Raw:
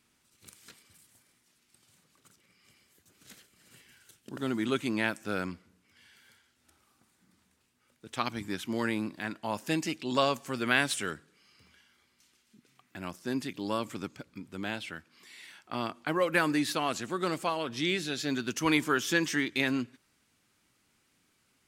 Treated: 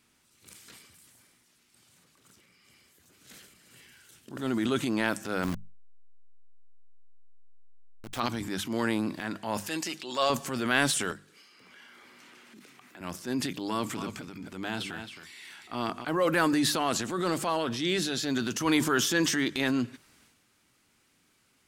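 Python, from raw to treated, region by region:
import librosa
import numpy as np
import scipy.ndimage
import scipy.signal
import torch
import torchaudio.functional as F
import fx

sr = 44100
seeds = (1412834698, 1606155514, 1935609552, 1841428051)

y = fx.chain(x, sr, fx.delta_hold(step_db=-40.5),
    fx.leveller(passes=1), at=(5.43, 8.2))
y = fx.chain(y, sr, fx.highpass(hz=730.0, slope=6),
    fx.comb(ms=5.6, depth=0.3), at=(9.6, 10.3))
y = fx.chain(y, sr, fx.highpass(hz=240.0, slope=12),
    fx.band_squash(depth_pct=100), at=(11.11, 13.01))
y = fx.chain(y, sr, fx.notch(hz=550.0, q=7.5),
    fx.echo_single(ms=266, db=-11.5), at=(13.68, 16.05))
y = fx.hum_notches(y, sr, base_hz=50, count=4)
y = fx.dynamic_eq(y, sr, hz=2300.0, q=2.8, threshold_db=-48.0, ratio=4.0, max_db=-6)
y = fx.transient(y, sr, attack_db=-5, sustain_db=7)
y = F.gain(torch.from_numpy(y), 3.0).numpy()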